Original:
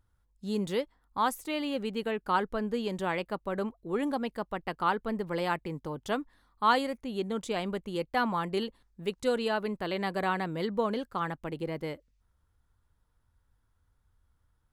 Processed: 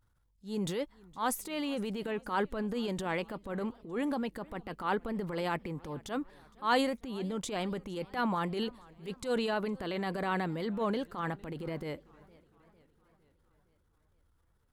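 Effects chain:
tape wow and flutter 23 cents
transient designer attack −10 dB, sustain +6 dB
feedback echo with a swinging delay time 458 ms, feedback 56%, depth 158 cents, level −24 dB
level −1.5 dB

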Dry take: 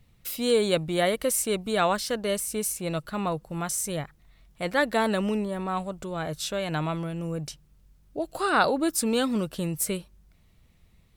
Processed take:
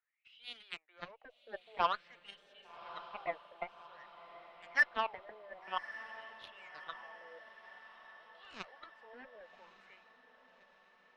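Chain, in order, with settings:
high-pass filter 450 Hz 24 dB per octave
in parallel at −11.5 dB: soft clipping −23.5 dBFS, distortion −10 dB
on the sum: LFO wah 0.51 Hz 590–3,300 Hz, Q 9.8
harmonic generator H 3 −28 dB, 5 −27 dB, 6 −43 dB, 7 −14 dB, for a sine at −20.5 dBFS
high-frequency loss of the air 220 metres
feedback delay with all-pass diffusion 1,155 ms, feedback 59%, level −14 dB
level +5 dB

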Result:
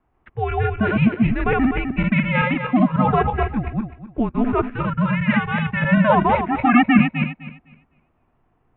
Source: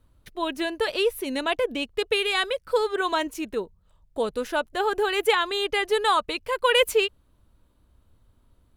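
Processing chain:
feedback delay that plays each chunk backwards 127 ms, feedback 45%, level −0.5 dB
0:04.71–0:05.82: parametric band 820 Hz −13.5 dB 1 octave
single-sideband voice off tune −240 Hz 180–2,600 Hz
high-frequency loss of the air 140 metres
level +5 dB

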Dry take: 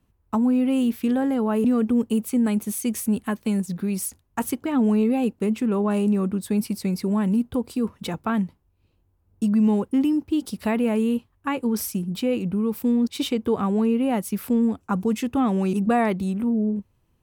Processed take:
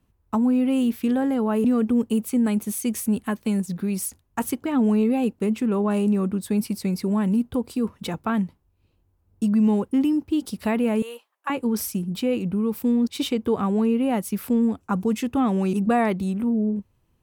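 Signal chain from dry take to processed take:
0:11.02–0:11.50: high-pass filter 550 Hz 24 dB per octave

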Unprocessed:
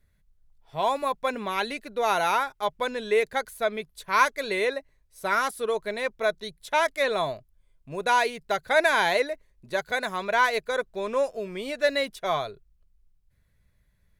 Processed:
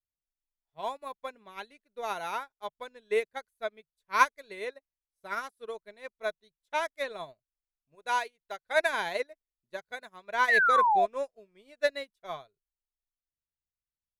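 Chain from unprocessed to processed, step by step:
0:07.95–0:08.89: parametric band 140 Hz −8.5 dB 2.1 octaves
0:10.48–0:11.06: sound drawn into the spectrogram fall 650–2,000 Hz −19 dBFS
expander for the loud parts 2.5 to 1, over −40 dBFS

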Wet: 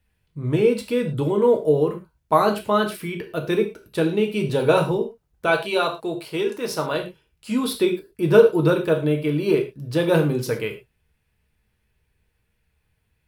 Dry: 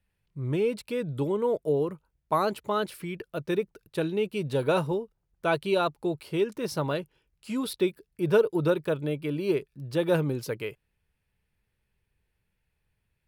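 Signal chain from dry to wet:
0:05.46–0:06.97: low-shelf EQ 290 Hz −11 dB
reverb whose tail is shaped and stops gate 140 ms falling, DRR 3 dB
level +5.5 dB

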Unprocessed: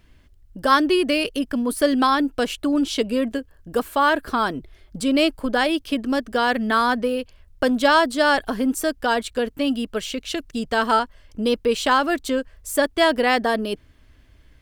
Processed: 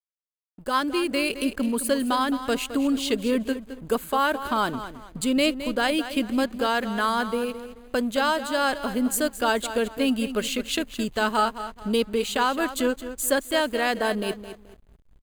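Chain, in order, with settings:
speech leveller within 4 dB 0.5 s
wrong playback speed 25 fps video run at 24 fps
on a send: repeating echo 215 ms, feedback 35%, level −11.5 dB
on the sum: slack as between gear wheels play −38.5 dBFS
high-shelf EQ 6,100 Hz +9.5 dB
notch filter 5,500 Hz, Q 5.2
level −4 dB

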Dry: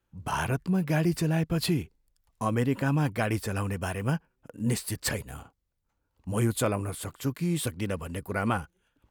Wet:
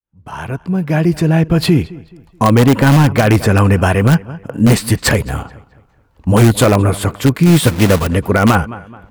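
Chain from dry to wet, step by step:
fade in at the beginning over 2.75 s
high-shelf EQ 4,100 Hz −10 dB
0:07.46–0:08.07: log-companded quantiser 4 bits
feedback echo with a low-pass in the loop 214 ms, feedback 37%, low-pass 4,100 Hz, level −21 dB
in parallel at −9 dB: wrap-around overflow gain 20.5 dB
on the sum: boost into a limiter +19 dB
level −1 dB

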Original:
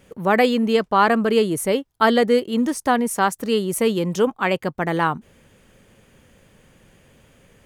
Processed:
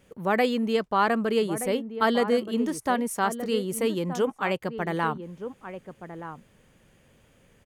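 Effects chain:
slap from a distant wall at 210 metres, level −10 dB
level −6.5 dB

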